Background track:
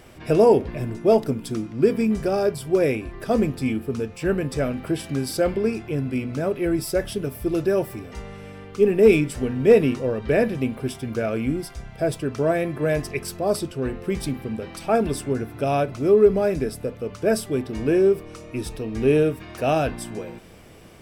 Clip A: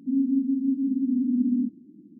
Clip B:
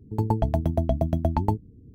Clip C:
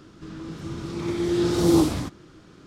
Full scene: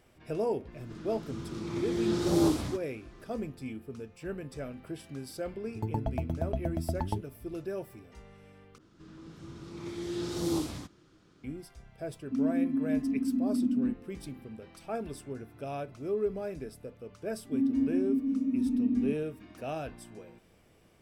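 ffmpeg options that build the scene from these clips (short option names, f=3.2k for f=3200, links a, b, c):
-filter_complex "[3:a]asplit=2[a][b];[1:a]asplit=2[c][d];[0:a]volume=-15.5dB[e];[b]adynamicequalizer=threshold=0.0112:dfrequency=2200:dqfactor=0.7:tfrequency=2200:tqfactor=0.7:attack=5:release=100:ratio=0.375:range=2:mode=boostabove:tftype=highshelf[f];[e]asplit=2[g][h];[g]atrim=end=8.784[i];[f]atrim=end=2.66,asetpts=PTS-STARTPTS,volume=-12.5dB[j];[h]atrim=start=11.436[k];[a]atrim=end=2.66,asetpts=PTS-STARTPTS,volume=-7dB,afade=t=in:d=0.1,afade=t=out:st=2.56:d=0.1,adelay=680[l];[2:a]atrim=end=1.94,asetpts=PTS-STARTPTS,volume=-9dB,afade=t=in:d=0.004:c=hsin,afade=t=out:st=1.936:d=0.004:c=hsin,adelay=5640[m];[c]atrim=end=2.19,asetpts=PTS-STARTPTS,volume=-5dB,afade=t=in:d=0.004:c=hsin,afade=t=out:st=2.186:d=0.004:c=hsin,adelay=12250[n];[d]atrim=end=2.19,asetpts=PTS-STARTPTS,volume=-4.5dB,afade=t=in:d=0.004:c=hsin,afade=t=out:st=2.186:d=0.004:c=hsin,adelay=17450[o];[i][j]acrossfade=d=0.004:c1=hsin:c2=hsin[p];[p][k]acrossfade=d=0.004:c1=hsin:c2=hsin[q];[q][l][m][n][o]amix=inputs=5:normalize=0"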